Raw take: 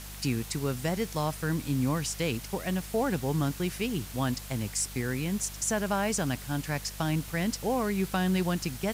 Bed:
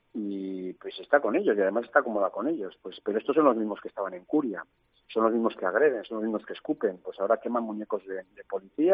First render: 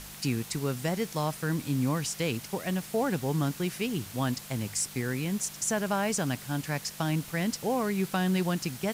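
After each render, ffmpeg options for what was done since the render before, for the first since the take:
ffmpeg -i in.wav -af "bandreject=frequency=50:width_type=h:width=4,bandreject=frequency=100:width_type=h:width=4" out.wav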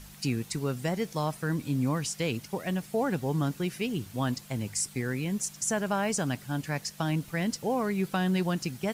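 ffmpeg -i in.wav -af "afftdn=noise_reduction=8:noise_floor=-45" out.wav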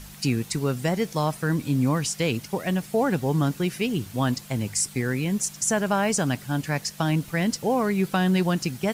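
ffmpeg -i in.wav -af "volume=5.5dB" out.wav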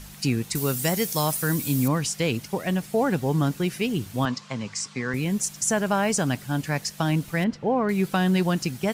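ffmpeg -i in.wav -filter_complex "[0:a]asettb=1/sr,asplit=3[link_01][link_02][link_03];[link_01]atrim=end=0.554[link_04];[link_02]atrim=start=0.55:end=1.88,asetpts=PTS-STARTPTS,afade=type=in:duration=0.004:curve=qsin,afade=type=out:start_time=1.326:duration=0.004:curve=qsin,aemphasis=mode=production:type=75fm[link_05];[link_03]atrim=start=1.876[link_06];[link_04][link_05]acrossfade=duration=0.004:curve1=hsin:curve2=qsin[link_07];[link_07][link_06]acrossfade=duration=0.004:curve1=qsin:curve2=hsin,asettb=1/sr,asplit=3[link_08][link_09][link_10];[link_08]atrim=end=4.254[link_11];[link_09]atrim=start=4.25:end=5.14,asetpts=PTS-STARTPTS,afade=type=in:duration=0.004:curve=qsin,afade=type=out:start_time=0.886:duration=0.004:curve=qsin,highpass=170,equalizer=frequency=330:width_type=q:width=4:gain=-10,equalizer=frequency=720:width_type=q:width=4:gain=-4,equalizer=frequency=1100:width_type=q:width=4:gain=10,lowpass=frequency=6400:width=0.5412,lowpass=frequency=6400:width=1.3066[link_12];[link_10]atrim=start=5.136[link_13];[link_11][link_12]acrossfade=duration=0.004:curve1=hsin:curve2=qsin[link_14];[link_14][link_13]acrossfade=duration=0.004:curve1=qsin:curve2=hsin,asettb=1/sr,asplit=3[link_15][link_16][link_17];[link_15]atrim=end=7.444[link_18];[link_16]atrim=start=7.44:end=7.89,asetpts=PTS-STARTPTS,afade=type=in:duration=0.004:curve=qsin,afade=type=out:start_time=0.446:duration=0.004:curve=qsin,lowpass=2200[link_19];[link_17]atrim=start=7.886[link_20];[link_18][link_19]acrossfade=duration=0.004:curve1=hsin:curve2=qsin[link_21];[link_21][link_20]acrossfade=duration=0.004:curve1=qsin:curve2=hsin" out.wav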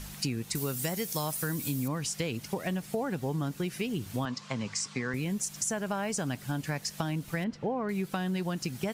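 ffmpeg -i in.wav -af "acompressor=threshold=-29dB:ratio=6" out.wav

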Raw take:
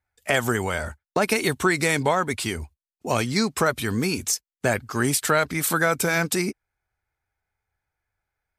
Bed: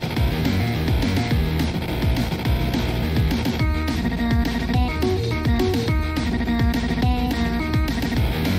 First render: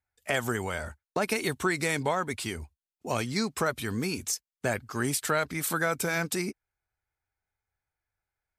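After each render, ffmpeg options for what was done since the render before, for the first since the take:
ffmpeg -i in.wav -af "volume=-6.5dB" out.wav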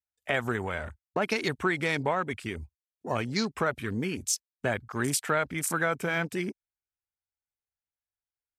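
ffmpeg -i in.wav -af "afwtdn=0.0126,equalizer=frequency=6800:width=0.42:gain=3" out.wav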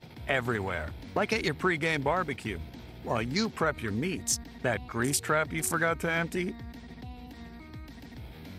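ffmpeg -i in.wav -i bed.wav -filter_complex "[1:a]volume=-23.5dB[link_01];[0:a][link_01]amix=inputs=2:normalize=0" out.wav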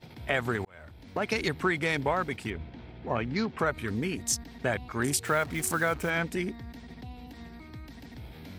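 ffmpeg -i in.wav -filter_complex "[0:a]asettb=1/sr,asplit=3[link_01][link_02][link_03];[link_01]atrim=end=2.504[link_04];[link_02]atrim=start=2.5:end=3.59,asetpts=PTS-STARTPTS,afade=type=in:duration=0.004:curve=qsin,afade=type=out:start_time=1.086:duration=0.004:curve=qsin,lowpass=3000[link_05];[link_03]atrim=start=3.586[link_06];[link_04][link_05]acrossfade=duration=0.004:curve1=hsin:curve2=qsin[link_07];[link_07][link_06]acrossfade=duration=0.004:curve1=qsin:curve2=hsin,asettb=1/sr,asplit=3[link_08][link_09][link_10];[link_08]atrim=end=5.254[link_11];[link_09]atrim=start=5.25:end=6.1,asetpts=PTS-STARTPTS,afade=type=in:duration=0.004:curve=qsin,afade=type=out:start_time=0.846:duration=0.004:curve=qsin,acrusher=bits=6:mix=0:aa=0.5[link_12];[link_10]atrim=start=6.096[link_13];[link_11][link_12]acrossfade=duration=0.004:curve1=hsin:curve2=qsin[link_14];[link_14][link_13]acrossfade=duration=0.004:curve1=qsin:curve2=hsin,asplit=2[link_15][link_16];[link_15]atrim=end=0.65,asetpts=PTS-STARTPTS,afade=type=out:start_time=0.646:duration=0.004:curve=hsin[link_17];[link_16]atrim=start=0.65,asetpts=PTS-STARTPTS,afade=type=in:duration=0.74[link_18];[link_17][link_18]concat=n=2:v=0:a=1" out.wav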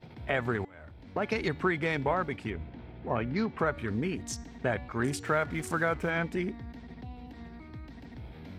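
ffmpeg -i in.wav -af "aemphasis=mode=reproduction:type=75kf,bandreject=frequency=287:width_type=h:width=4,bandreject=frequency=574:width_type=h:width=4,bandreject=frequency=861:width_type=h:width=4,bandreject=frequency=1148:width_type=h:width=4,bandreject=frequency=1435:width_type=h:width=4,bandreject=frequency=1722:width_type=h:width=4,bandreject=frequency=2009:width_type=h:width=4,bandreject=frequency=2296:width_type=h:width=4,bandreject=frequency=2583:width_type=h:width=4,bandreject=frequency=2870:width_type=h:width=4,bandreject=frequency=3157:width_type=h:width=4,bandreject=frequency=3444:width_type=h:width=4,bandreject=frequency=3731:width_type=h:width=4,bandreject=frequency=4018:width_type=h:width=4,bandreject=frequency=4305:width_type=h:width=4,bandreject=frequency=4592:width_type=h:width=4,bandreject=frequency=4879:width_type=h:width=4,bandreject=frequency=5166:width_type=h:width=4,bandreject=frequency=5453:width_type=h:width=4,bandreject=frequency=5740:width_type=h:width=4,bandreject=frequency=6027:width_type=h:width=4,bandreject=frequency=6314:width_type=h:width=4,bandreject=frequency=6601:width_type=h:width=4,bandreject=frequency=6888:width_type=h:width=4,bandreject=frequency=7175:width_type=h:width=4,bandreject=frequency=7462:width_type=h:width=4,bandreject=frequency=7749:width_type=h:width=4,bandreject=frequency=8036:width_type=h:width=4" out.wav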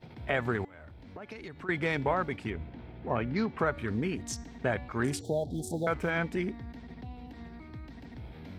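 ffmpeg -i in.wav -filter_complex "[0:a]asettb=1/sr,asplit=3[link_01][link_02][link_03];[link_01]atrim=end=0.734[link_04];[link_02]atrim=start=0.73:end=1.69,asetpts=PTS-STARTPTS,afade=type=in:duration=0.004:curve=qsin,afade=type=out:start_time=0.956:duration=0.004:curve=qsin,acompressor=threshold=-44dB:ratio=3:attack=3.2:release=140:knee=1:detection=peak[link_05];[link_03]atrim=start=1.686[link_06];[link_04][link_05]acrossfade=duration=0.004:curve1=hsin:curve2=qsin[link_07];[link_07][link_06]acrossfade=duration=0.004:curve1=qsin:curve2=hsin,asettb=1/sr,asplit=3[link_08][link_09][link_10];[link_08]atrim=end=5.214[link_11];[link_09]atrim=start=5.21:end=5.87,asetpts=PTS-STARTPTS,afade=type=in:duration=0.004:curve=qsin,afade=type=out:start_time=0.656:duration=0.004:curve=qsin,asuperstop=centerf=1700:order=20:qfactor=0.66[link_12];[link_10]atrim=start=5.866[link_13];[link_11][link_12]acrossfade=duration=0.004:curve1=hsin:curve2=qsin[link_14];[link_14][link_13]acrossfade=duration=0.004:curve1=qsin:curve2=hsin" out.wav

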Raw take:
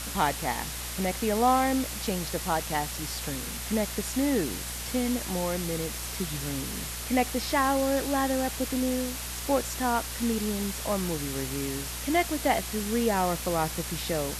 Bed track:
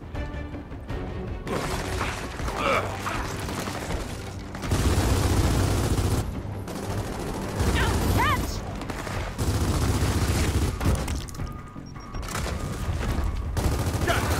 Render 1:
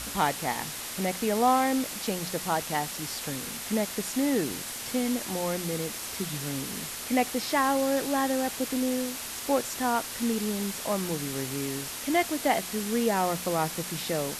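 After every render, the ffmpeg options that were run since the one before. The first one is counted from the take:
ffmpeg -i in.wav -af "bandreject=frequency=60:width_type=h:width=4,bandreject=frequency=120:width_type=h:width=4,bandreject=frequency=180:width_type=h:width=4" out.wav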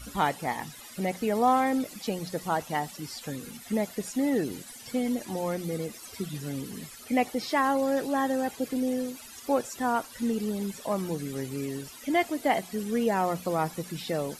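ffmpeg -i in.wav -af "afftdn=noise_reduction=16:noise_floor=-37" out.wav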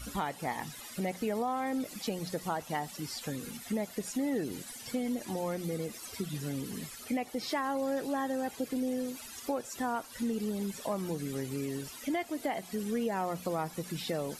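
ffmpeg -i in.wav -af "alimiter=limit=-17.5dB:level=0:latency=1:release=298,acompressor=threshold=-33dB:ratio=2" out.wav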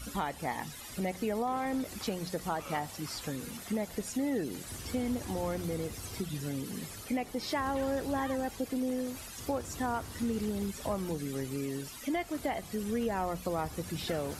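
ffmpeg -i in.wav -i bed.wav -filter_complex "[1:a]volume=-21.5dB[link_01];[0:a][link_01]amix=inputs=2:normalize=0" out.wav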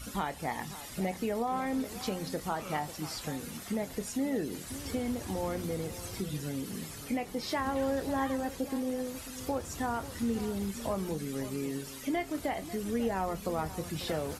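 ffmpeg -i in.wav -filter_complex "[0:a]asplit=2[link_01][link_02];[link_02]adelay=26,volume=-12dB[link_03];[link_01][link_03]amix=inputs=2:normalize=0,asplit=2[link_04][link_05];[link_05]adelay=542.3,volume=-14dB,highshelf=frequency=4000:gain=-12.2[link_06];[link_04][link_06]amix=inputs=2:normalize=0" out.wav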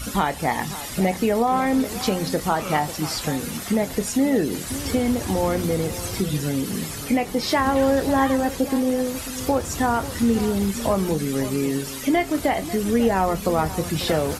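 ffmpeg -i in.wav -af "volume=12dB" out.wav

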